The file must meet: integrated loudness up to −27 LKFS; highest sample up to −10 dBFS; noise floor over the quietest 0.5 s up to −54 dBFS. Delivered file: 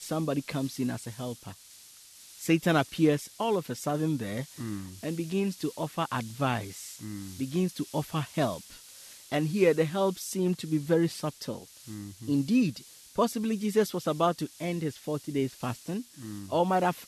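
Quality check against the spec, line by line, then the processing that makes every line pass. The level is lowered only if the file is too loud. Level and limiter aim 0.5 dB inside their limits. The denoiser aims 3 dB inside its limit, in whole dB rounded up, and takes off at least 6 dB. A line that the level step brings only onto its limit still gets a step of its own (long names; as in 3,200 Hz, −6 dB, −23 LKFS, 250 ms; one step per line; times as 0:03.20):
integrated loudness −30.0 LKFS: in spec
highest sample −11.5 dBFS: in spec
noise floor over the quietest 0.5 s −53 dBFS: out of spec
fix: broadband denoise 6 dB, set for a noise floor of −53 dBFS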